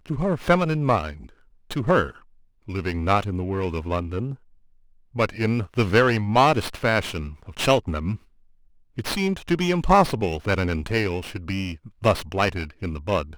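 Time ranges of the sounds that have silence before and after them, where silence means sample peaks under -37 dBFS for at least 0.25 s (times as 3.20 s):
1.71–2.18 s
2.68–4.35 s
5.15–8.16 s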